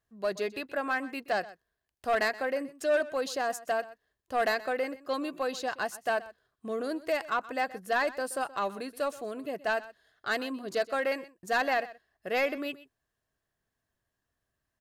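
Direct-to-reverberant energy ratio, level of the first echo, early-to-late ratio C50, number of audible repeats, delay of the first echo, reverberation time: none, -18.0 dB, none, 1, 0.125 s, none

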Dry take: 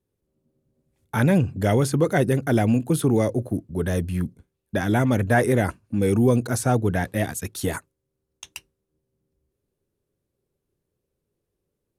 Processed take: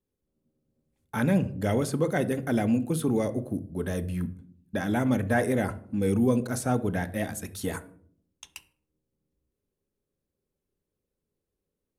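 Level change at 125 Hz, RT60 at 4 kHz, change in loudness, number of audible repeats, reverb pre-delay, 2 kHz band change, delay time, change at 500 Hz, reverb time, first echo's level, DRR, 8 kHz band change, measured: -7.5 dB, 0.35 s, -5.5 dB, none, 4 ms, -5.5 dB, none, -5.5 dB, 0.60 s, none, 9.5 dB, -6.0 dB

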